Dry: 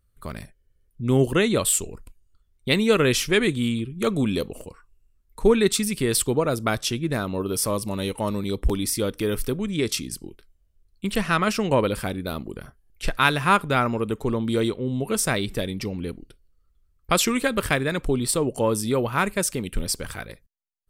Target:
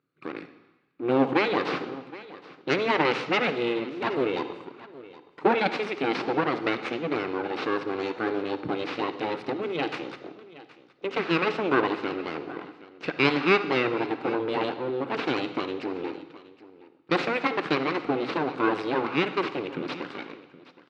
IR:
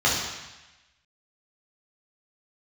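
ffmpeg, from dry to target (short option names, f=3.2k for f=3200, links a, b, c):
-filter_complex "[0:a]aeval=exprs='abs(val(0))':c=same,highpass=f=190:w=0.5412,highpass=f=190:w=1.3066,equalizer=f=210:t=q:w=4:g=-8,equalizer=f=320:t=q:w=4:g=3,equalizer=f=640:t=q:w=4:g=-9,equalizer=f=920:t=q:w=4:g=-5,equalizer=f=1.8k:t=q:w=4:g=-6,equalizer=f=3.2k:t=q:w=4:g=-8,lowpass=f=3.4k:w=0.5412,lowpass=f=3.4k:w=1.3066,aecho=1:1:770:0.119,asplit=2[a][b];[1:a]atrim=start_sample=2205,adelay=53[c];[b][c]afir=irnorm=-1:irlink=0,volume=-28dB[d];[a][d]amix=inputs=2:normalize=0,volume=4.5dB"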